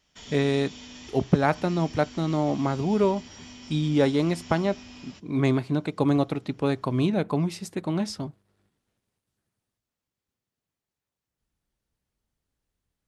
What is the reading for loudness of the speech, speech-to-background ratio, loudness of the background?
-26.0 LUFS, 18.0 dB, -44.0 LUFS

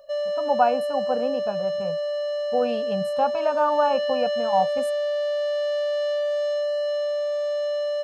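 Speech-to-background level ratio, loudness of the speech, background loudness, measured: 0.5 dB, -25.5 LUFS, -26.0 LUFS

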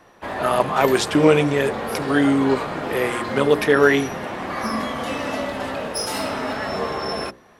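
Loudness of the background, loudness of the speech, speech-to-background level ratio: -27.0 LUFS, -19.5 LUFS, 7.5 dB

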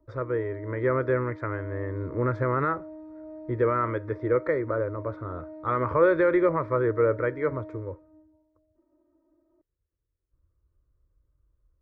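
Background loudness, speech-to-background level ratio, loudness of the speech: -43.5 LUFS, 17.0 dB, -26.5 LUFS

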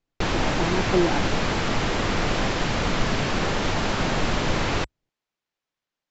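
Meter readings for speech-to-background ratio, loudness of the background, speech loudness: -2.5 dB, -25.0 LUFS, -27.5 LUFS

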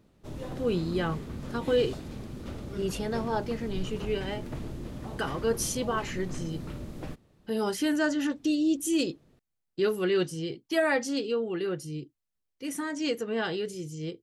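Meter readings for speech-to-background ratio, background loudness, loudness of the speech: 9.0 dB, -39.5 LUFS, -30.5 LUFS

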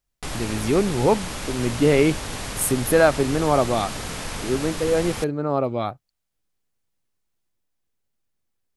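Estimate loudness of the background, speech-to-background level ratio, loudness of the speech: -31.0 LUFS, 9.0 dB, -22.0 LUFS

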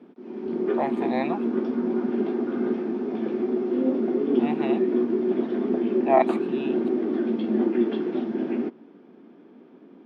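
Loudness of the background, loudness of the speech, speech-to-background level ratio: -25.5 LUFS, -28.5 LUFS, -3.0 dB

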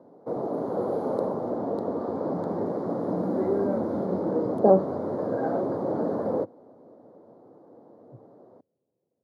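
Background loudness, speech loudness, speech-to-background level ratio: -28.5 LUFS, -22.0 LUFS, 6.5 dB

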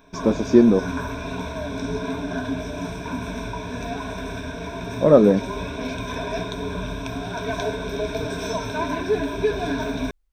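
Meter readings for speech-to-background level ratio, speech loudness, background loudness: 11.0 dB, -17.5 LUFS, -28.5 LUFS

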